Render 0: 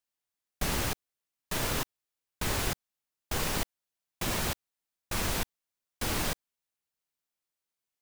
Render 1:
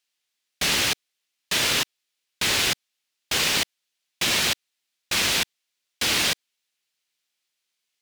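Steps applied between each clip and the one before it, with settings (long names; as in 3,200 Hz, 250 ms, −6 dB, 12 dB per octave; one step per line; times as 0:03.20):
meter weighting curve D
level +4 dB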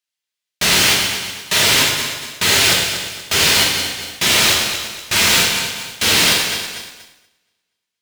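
feedback delay that plays each chunk backwards 119 ms, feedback 64%, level −11 dB
leveller curve on the samples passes 3
reverb whose tail is shaped and stops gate 260 ms falling, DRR −1.5 dB
level −2.5 dB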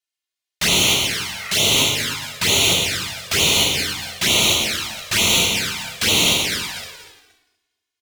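healed spectral selection 0:01.34–0:01.71, 870–2,600 Hz both
slap from a distant wall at 51 metres, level −10 dB
flanger swept by the level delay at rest 2.8 ms, full sweep at −12 dBFS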